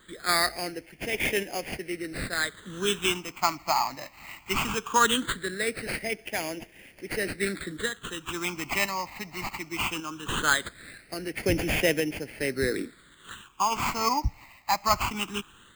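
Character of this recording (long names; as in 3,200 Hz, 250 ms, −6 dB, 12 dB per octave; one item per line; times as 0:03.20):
aliases and images of a low sample rate 5,700 Hz, jitter 0%
phaser sweep stages 8, 0.19 Hz, lowest notch 450–1,200 Hz
sample-and-hold tremolo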